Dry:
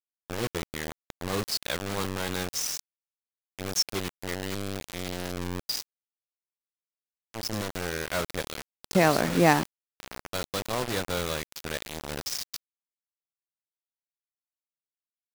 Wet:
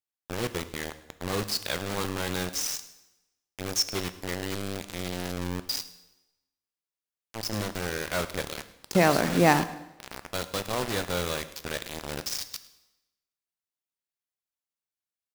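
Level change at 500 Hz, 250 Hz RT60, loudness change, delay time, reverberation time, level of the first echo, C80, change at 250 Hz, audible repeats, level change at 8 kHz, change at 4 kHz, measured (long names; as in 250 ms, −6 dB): +0.5 dB, 0.95 s, +0.5 dB, 105 ms, 0.95 s, −20.5 dB, 15.0 dB, +0.5 dB, 1, +0.5 dB, +0.5 dB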